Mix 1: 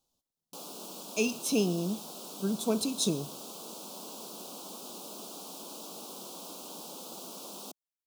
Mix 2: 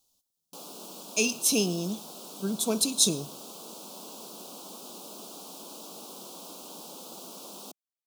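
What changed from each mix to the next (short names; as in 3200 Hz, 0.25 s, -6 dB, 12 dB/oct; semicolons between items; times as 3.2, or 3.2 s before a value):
speech: add high shelf 3000 Hz +11.5 dB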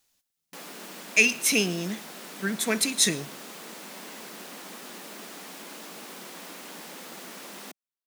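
background: add low shelf 260 Hz +4.5 dB; master: remove Butterworth band-stop 1900 Hz, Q 0.85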